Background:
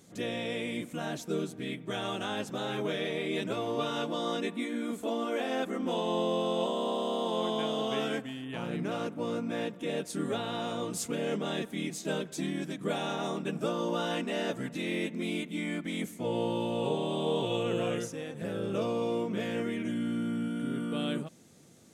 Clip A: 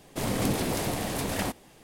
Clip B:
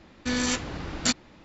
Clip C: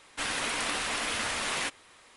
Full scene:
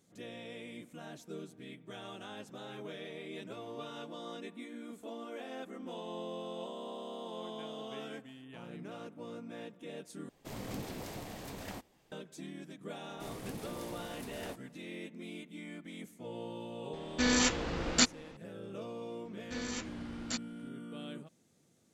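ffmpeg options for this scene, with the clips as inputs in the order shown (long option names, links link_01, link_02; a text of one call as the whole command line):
ffmpeg -i bed.wav -i cue0.wav -i cue1.wav -filter_complex "[1:a]asplit=2[link_01][link_02];[2:a]asplit=2[link_03][link_04];[0:a]volume=-12dB[link_05];[link_01]equalizer=frequency=10000:width_type=o:width=0.3:gain=-9[link_06];[link_03]equalizer=frequency=110:width_type=o:width=0.77:gain=-8.5[link_07];[link_05]asplit=2[link_08][link_09];[link_08]atrim=end=10.294[link_10];[link_06]atrim=end=1.83,asetpts=PTS-STARTPTS,volume=-14dB[link_11];[link_09]atrim=start=12.116[link_12];[link_02]atrim=end=1.83,asetpts=PTS-STARTPTS,volume=-17dB,afade=type=in:duration=0.004:curve=hsin,afade=type=out:start_time=1.826:duration=0.004:curve=hsin,adelay=13040[link_13];[link_07]atrim=end=1.44,asetpts=PTS-STARTPTS,volume=-1dB,afade=type=in:duration=0.004:curve=hsin,afade=type=out:start_time=1.436:duration=0.004:curve=hsin,adelay=16930[link_14];[link_04]atrim=end=1.44,asetpts=PTS-STARTPTS,volume=-13.5dB,afade=type=in:duration=0.004:curve=hsin,afade=type=out:start_time=1.436:duration=0.004:curve=hsin,adelay=19250[link_15];[link_10][link_11]acrossfade=duration=0.004:curve1=hsin:curve2=hsin[link_16];[link_16][link_12]acrossfade=duration=0.004:curve1=hsin:curve2=hsin[link_17];[link_17][link_13][link_14][link_15]amix=inputs=4:normalize=0" out.wav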